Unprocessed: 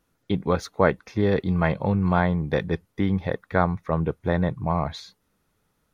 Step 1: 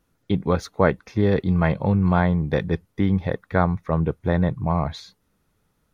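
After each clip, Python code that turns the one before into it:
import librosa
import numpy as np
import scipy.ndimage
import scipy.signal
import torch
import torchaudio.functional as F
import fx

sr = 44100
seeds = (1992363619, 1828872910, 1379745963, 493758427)

y = fx.low_shelf(x, sr, hz=250.0, db=4.5)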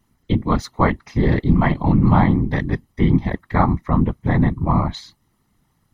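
y = x + 0.62 * np.pad(x, (int(1.0 * sr / 1000.0), 0))[:len(x)]
y = fx.whisperise(y, sr, seeds[0])
y = y * librosa.db_to_amplitude(2.0)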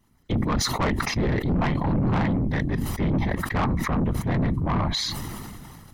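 y = 10.0 ** (-18.0 / 20.0) * np.tanh(x / 10.0 ** (-18.0 / 20.0))
y = fx.sustainer(y, sr, db_per_s=23.0)
y = y * librosa.db_to_amplitude(-1.5)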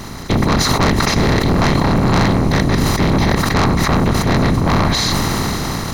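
y = fx.bin_compress(x, sr, power=0.4)
y = fx.echo_alternate(y, sr, ms=279, hz=830.0, feedback_pct=58, wet_db=-12.0)
y = y * librosa.db_to_amplitude(4.5)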